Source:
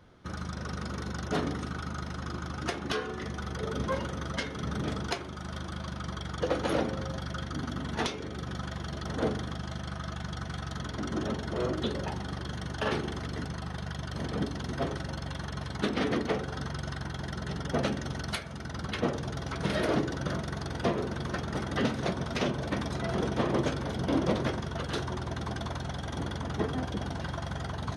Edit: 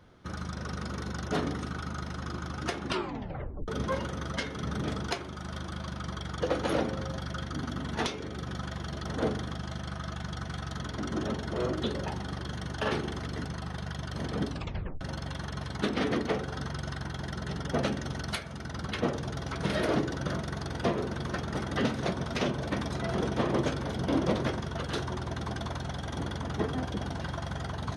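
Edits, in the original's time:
2.85 s: tape stop 0.83 s
14.50 s: tape stop 0.51 s

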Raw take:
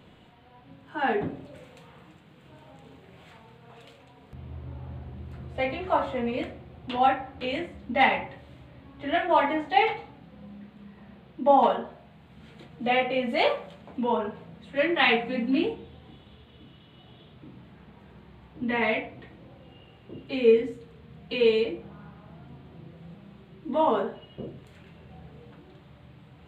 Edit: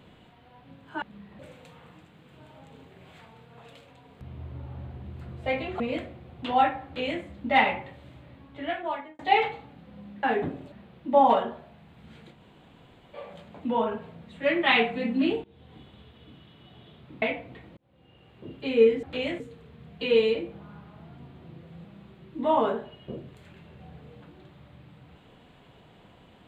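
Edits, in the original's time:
1.02–1.51 s: swap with 10.68–11.05 s
5.92–6.25 s: delete
7.31–7.68 s: copy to 20.70 s
8.73–9.64 s: fade out
12.66–13.58 s: room tone, crossfade 0.24 s
15.77–16.08 s: fade in, from -21.5 dB
17.55–18.89 s: delete
19.44–20.14 s: fade in

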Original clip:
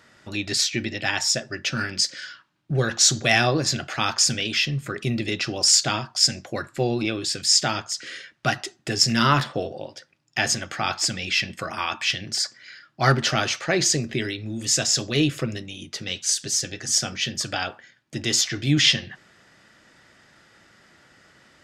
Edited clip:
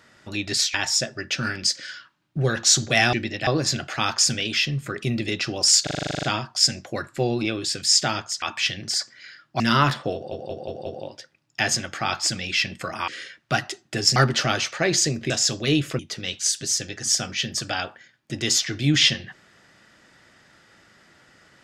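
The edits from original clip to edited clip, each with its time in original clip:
0.74–1.08 s: move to 3.47 s
5.83 s: stutter 0.04 s, 11 plays
8.02–9.10 s: swap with 11.86–13.04 s
9.64 s: stutter 0.18 s, 5 plays
14.18–14.78 s: delete
15.47–15.82 s: delete

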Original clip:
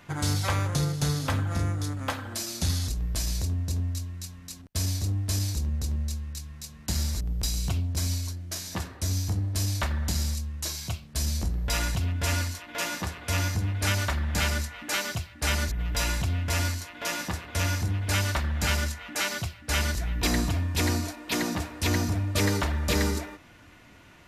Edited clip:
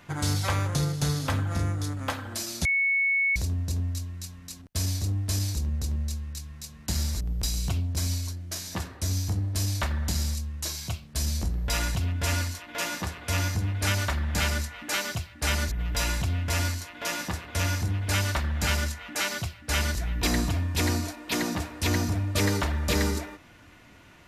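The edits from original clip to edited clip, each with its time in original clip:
2.65–3.36 s: bleep 2.21 kHz -21 dBFS

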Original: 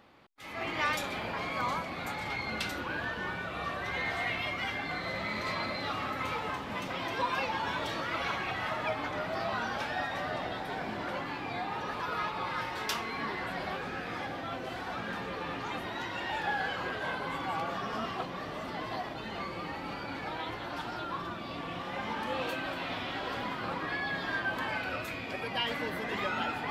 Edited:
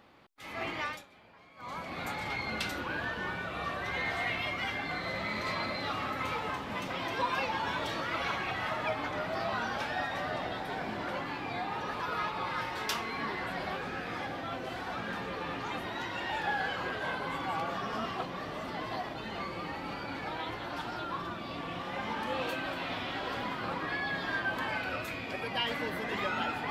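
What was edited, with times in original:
0.63–1.99 s: dip -22 dB, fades 0.42 s

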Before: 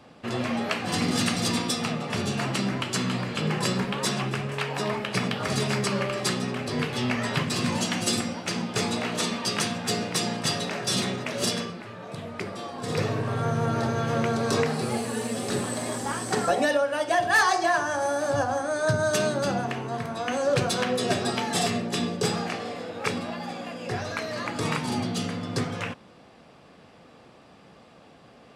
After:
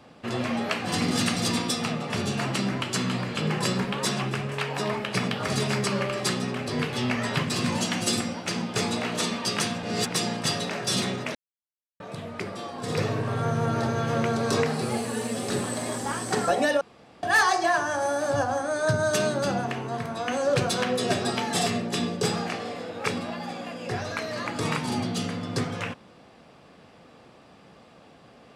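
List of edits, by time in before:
9.83–10.10 s: reverse
11.35–12.00 s: mute
16.81–17.23 s: room tone

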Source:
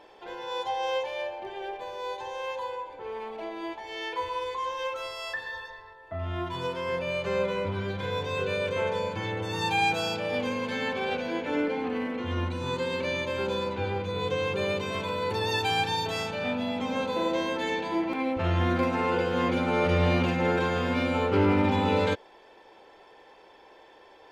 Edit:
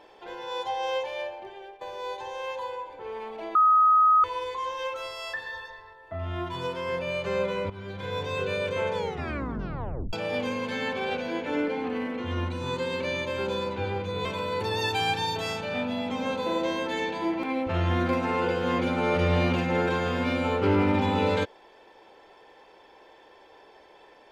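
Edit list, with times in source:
1.20–1.81 s: fade out, to -14 dB
3.55–4.24 s: bleep 1.26 kHz -15.5 dBFS
7.70–8.22 s: fade in, from -12.5 dB
8.96 s: tape stop 1.17 s
14.25–14.95 s: delete

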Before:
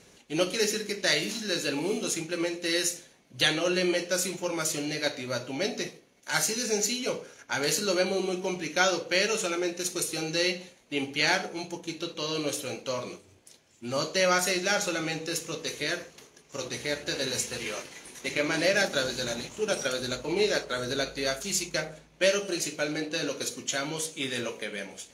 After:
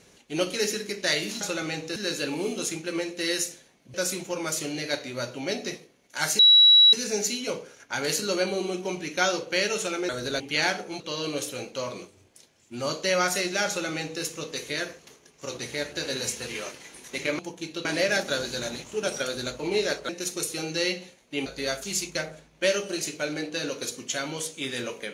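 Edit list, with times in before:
3.39–4.07 s: delete
6.52 s: add tone 3.9 kHz -11.5 dBFS 0.54 s
9.68–11.05 s: swap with 20.74–21.05 s
11.65–12.11 s: move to 18.50 s
14.79–15.34 s: copy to 1.41 s

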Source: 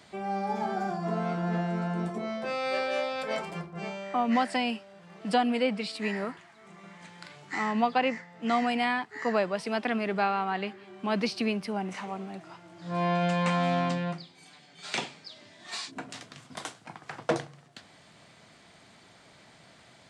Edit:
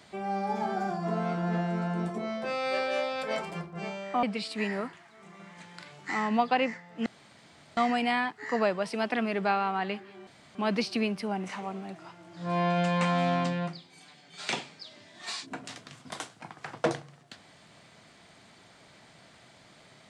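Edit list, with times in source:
4.23–5.67 s: delete
8.50 s: insert room tone 0.71 s
11.00 s: insert room tone 0.28 s

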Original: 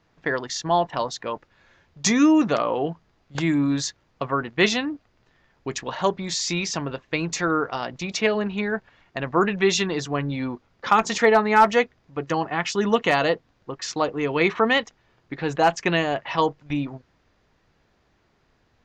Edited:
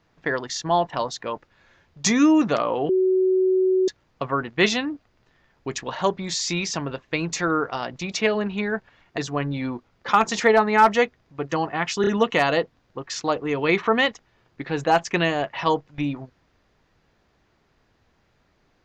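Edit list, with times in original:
2.89–3.88 s: bleep 374 Hz -16 dBFS
9.18–9.96 s: delete
12.79 s: stutter 0.03 s, 3 plays

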